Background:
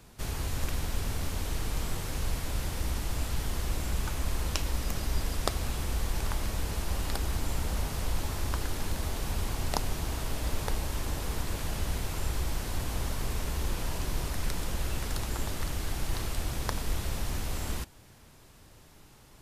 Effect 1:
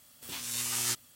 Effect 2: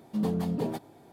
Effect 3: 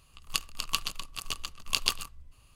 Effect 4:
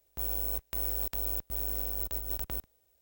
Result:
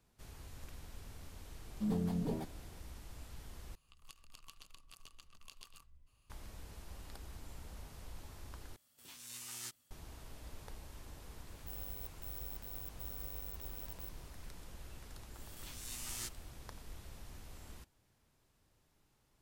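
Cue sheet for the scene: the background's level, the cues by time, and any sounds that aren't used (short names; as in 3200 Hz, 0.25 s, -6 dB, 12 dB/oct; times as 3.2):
background -19 dB
1.67 add 2 -10 dB + low shelf 150 Hz +10.5 dB
3.75 replace with 3 -12.5 dB + compressor 5:1, threshold -39 dBFS
8.76 replace with 1 -15 dB
11.49 add 4 -10.5 dB + limiter -26 dBFS
15.34 add 1 -13 dB + backwards sustainer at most 43 dB/s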